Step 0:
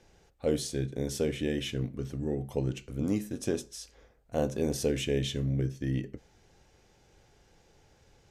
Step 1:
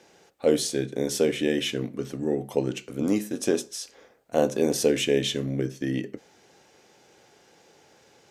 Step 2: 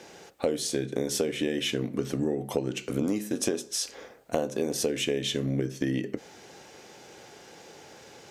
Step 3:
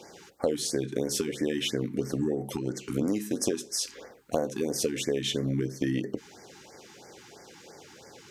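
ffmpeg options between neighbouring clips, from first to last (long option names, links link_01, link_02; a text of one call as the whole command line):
ffmpeg -i in.wav -af "highpass=240,volume=8dB" out.wav
ffmpeg -i in.wav -af "acompressor=threshold=-32dB:ratio=12,volume=8dB" out.wav
ffmpeg -i in.wav -af "afftfilt=real='re*(1-between(b*sr/1024,540*pow(3300/540,0.5+0.5*sin(2*PI*3*pts/sr))/1.41,540*pow(3300/540,0.5+0.5*sin(2*PI*3*pts/sr))*1.41))':imag='im*(1-between(b*sr/1024,540*pow(3300/540,0.5+0.5*sin(2*PI*3*pts/sr))/1.41,540*pow(3300/540,0.5+0.5*sin(2*PI*3*pts/sr))*1.41))':win_size=1024:overlap=0.75" out.wav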